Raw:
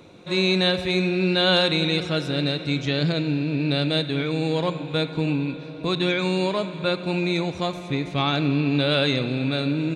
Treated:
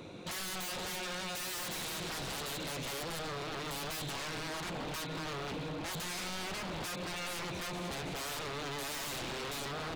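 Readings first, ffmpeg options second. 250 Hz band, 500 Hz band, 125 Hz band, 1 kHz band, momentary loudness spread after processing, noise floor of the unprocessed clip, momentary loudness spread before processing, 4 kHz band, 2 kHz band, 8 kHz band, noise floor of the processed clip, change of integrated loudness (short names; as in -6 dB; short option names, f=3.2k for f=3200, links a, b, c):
-21.0 dB, -18.0 dB, -19.5 dB, -9.5 dB, 2 LU, -37 dBFS, 7 LU, -14.5 dB, -12.5 dB, +6.0 dB, -40 dBFS, -15.0 dB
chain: -af "acompressor=threshold=-25dB:ratio=6,aeval=exprs='0.0188*(abs(mod(val(0)/0.0188+3,4)-2)-1)':c=same"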